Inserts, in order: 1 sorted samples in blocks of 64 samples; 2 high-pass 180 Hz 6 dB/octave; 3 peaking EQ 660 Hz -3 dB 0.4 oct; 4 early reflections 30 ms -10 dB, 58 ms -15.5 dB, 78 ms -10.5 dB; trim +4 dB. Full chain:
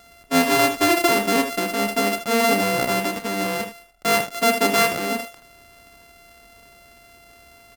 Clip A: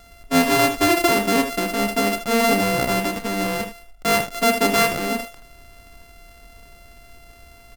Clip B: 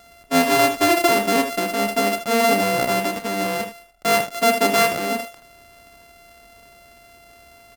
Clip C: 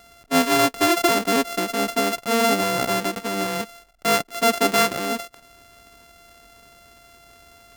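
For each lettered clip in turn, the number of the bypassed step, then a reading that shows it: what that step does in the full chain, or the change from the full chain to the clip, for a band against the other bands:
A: 2, 125 Hz band +3.5 dB; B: 3, 500 Hz band +2.0 dB; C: 4, echo-to-direct -6.5 dB to none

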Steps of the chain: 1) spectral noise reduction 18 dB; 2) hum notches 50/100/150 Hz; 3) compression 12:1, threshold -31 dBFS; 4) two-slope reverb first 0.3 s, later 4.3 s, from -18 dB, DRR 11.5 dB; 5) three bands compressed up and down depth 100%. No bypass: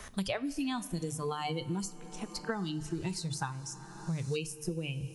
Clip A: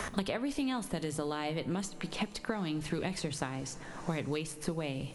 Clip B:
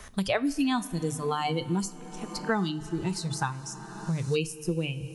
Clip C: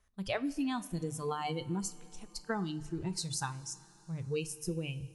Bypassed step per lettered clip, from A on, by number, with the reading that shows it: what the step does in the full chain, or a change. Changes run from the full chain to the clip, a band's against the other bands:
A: 1, 125 Hz band -2.5 dB; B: 3, mean gain reduction 4.0 dB; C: 5, crest factor change +2.5 dB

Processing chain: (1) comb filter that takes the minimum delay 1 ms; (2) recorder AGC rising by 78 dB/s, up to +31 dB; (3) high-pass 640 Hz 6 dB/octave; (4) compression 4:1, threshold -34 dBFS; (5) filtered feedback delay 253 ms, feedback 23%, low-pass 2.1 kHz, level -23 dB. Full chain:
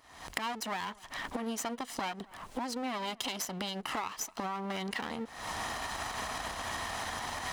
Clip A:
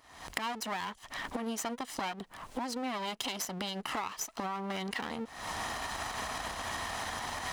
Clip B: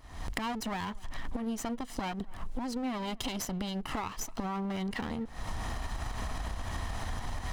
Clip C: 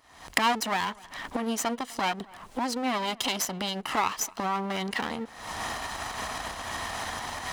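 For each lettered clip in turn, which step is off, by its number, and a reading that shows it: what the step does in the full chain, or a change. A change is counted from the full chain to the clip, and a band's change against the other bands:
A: 5, echo-to-direct -24.5 dB to none; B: 3, 125 Hz band +11.0 dB; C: 4, loudness change +6.5 LU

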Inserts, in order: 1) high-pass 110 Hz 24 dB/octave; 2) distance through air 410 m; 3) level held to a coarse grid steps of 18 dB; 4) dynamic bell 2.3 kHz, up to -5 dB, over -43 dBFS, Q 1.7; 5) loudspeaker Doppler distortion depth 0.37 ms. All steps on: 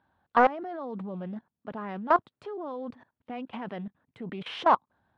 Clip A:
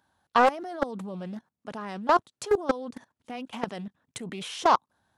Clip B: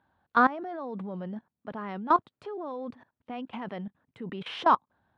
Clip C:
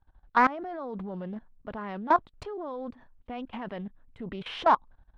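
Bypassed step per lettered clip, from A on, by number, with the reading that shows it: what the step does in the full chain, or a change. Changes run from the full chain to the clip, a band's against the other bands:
2, 4 kHz band +4.0 dB; 5, 500 Hz band -4.0 dB; 1, 500 Hz band -2.5 dB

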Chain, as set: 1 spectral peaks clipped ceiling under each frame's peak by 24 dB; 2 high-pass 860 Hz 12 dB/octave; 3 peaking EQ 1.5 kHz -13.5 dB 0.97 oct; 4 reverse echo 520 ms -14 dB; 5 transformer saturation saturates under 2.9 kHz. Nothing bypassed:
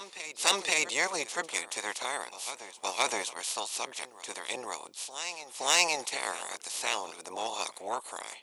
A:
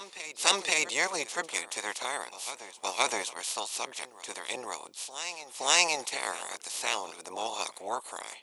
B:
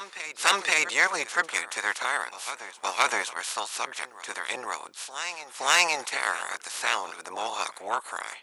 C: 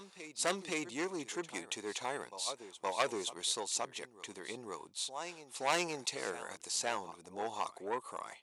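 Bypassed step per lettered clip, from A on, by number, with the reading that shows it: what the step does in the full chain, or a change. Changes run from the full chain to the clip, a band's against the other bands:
5, crest factor change +2.0 dB; 3, 2 kHz band +6.0 dB; 1, 125 Hz band +11.0 dB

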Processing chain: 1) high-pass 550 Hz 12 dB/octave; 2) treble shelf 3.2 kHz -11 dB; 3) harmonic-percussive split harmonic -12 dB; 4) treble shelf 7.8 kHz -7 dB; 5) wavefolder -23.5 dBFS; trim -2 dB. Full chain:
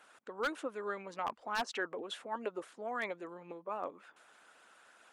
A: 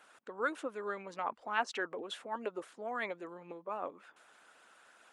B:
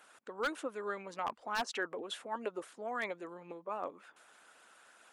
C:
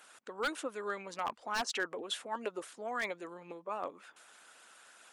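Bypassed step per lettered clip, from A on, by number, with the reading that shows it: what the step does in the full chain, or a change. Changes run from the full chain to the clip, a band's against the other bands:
5, distortion -11 dB; 4, 8 kHz band +2.5 dB; 2, 8 kHz band +8.0 dB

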